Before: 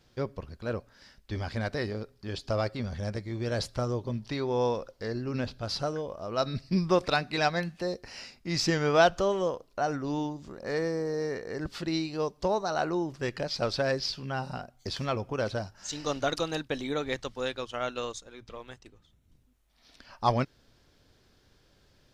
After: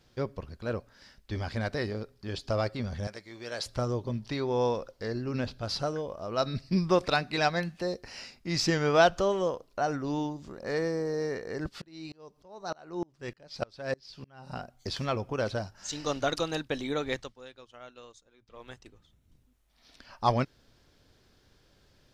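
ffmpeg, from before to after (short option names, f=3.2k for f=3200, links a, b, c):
-filter_complex "[0:a]asettb=1/sr,asplit=3[a][b][c];[a]atrim=end=3.074[d];[b]atrim=start=3.07:end=3.66,asetpts=PTS-STARTPTS,afade=t=in:d=0.004:c=qsin,afade=t=out:st=0.586:d=0.004:c=qsin,highpass=f=970:p=1[e];[c]atrim=start=3.656[f];[d][e]acrossfade=d=0.004:c1=hsin:c2=qsin[g];[g][f]acrossfade=d=0.004:c1=qsin:c2=hsin,asplit=3[h][i][j];[h]afade=t=out:st=11.68:d=0.02[k];[i]aeval=exprs='val(0)*pow(10,-32*if(lt(mod(-3.3*n/s,1),2*abs(-3.3)/1000),1-mod(-3.3*n/s,1)/(2*abs(-3.3)/1000),(mod(-3.3*n/s,1)-2*abs(-3.3)/1000)/(1-2*abs(-3.3)/1000))/20)':c=same,afade=t=in:st=11.68:d=0.02,afade=t=out:st=14.54:d=0.02[l];[j]afade=t=in:st=14.54:d=0.02[m];[k][l][m]amix=inputs=3:normalize=0,asplit=3[n][o][p];[n]atrim=end=17.34,asetpts=PTS-STARTPTS,afade=t=out:st=17.15:d=0.19:silence=0.16788[q];[o]atrim=start=17.34:end=18.49,asetpts=PTS-STARTPTS,volume=-15.5dB[r];[p]atrim=start=18.49,asetpts=PTS-STARTPTS,afade=t=in:d=0.19:silence=0.16788[s];[q][r][s]concat=n=3:v=0:a=1"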